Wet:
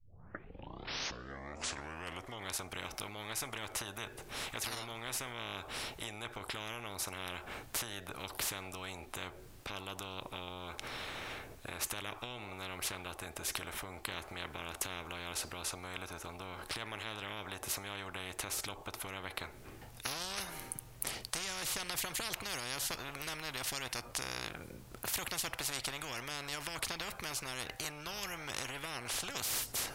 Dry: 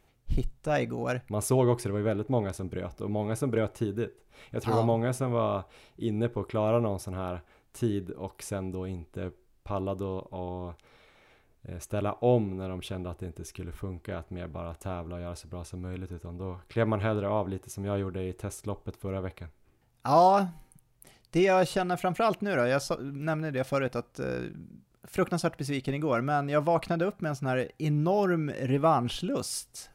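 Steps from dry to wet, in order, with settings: tape start-up on the opening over 2.52 s; resonant low shelf 150 Hz +11.5 dB, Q 1.5; peak limiter -16 dBFS, peak gain reduction 11 dB; compression 5:1, threshold -31 dBFS, peak gain reduction 11.5 dB; spectrum-flattening compressor 10:1; trim +6.5 dB

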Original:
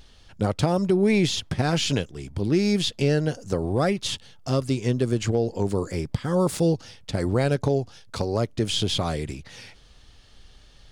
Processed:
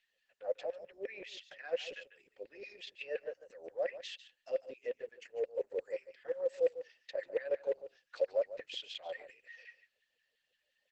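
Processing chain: expander on every frequency bin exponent 1.5; compression 12:1, threshold -32 dBFS, peak gain reduction 15 dB; LFO high-pass saw down 5.7 Hz 410–2400 Hz; vowel filter e; on a send: delay 145 ms -13.5 dB; on the sum: trim +8 dB; Opus 10 kbps 48 kHz

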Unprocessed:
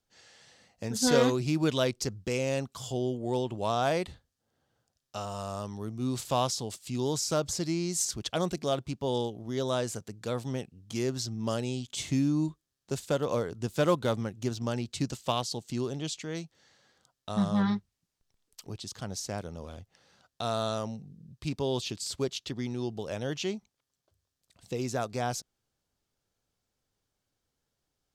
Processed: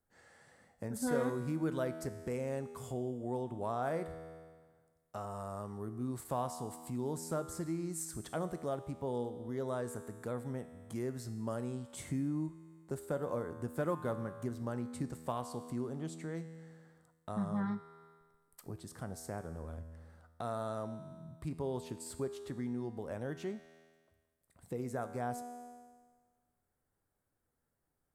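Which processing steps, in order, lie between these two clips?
high-order bell 4.1 kHz -15 dB; feedback comb 81 Hz, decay 1.4 s, harmonics all, mix 70%; compression 1.5:1, threshold -54 dBFS, peak gain reduction 9.5 dB; trim +8.5 dB

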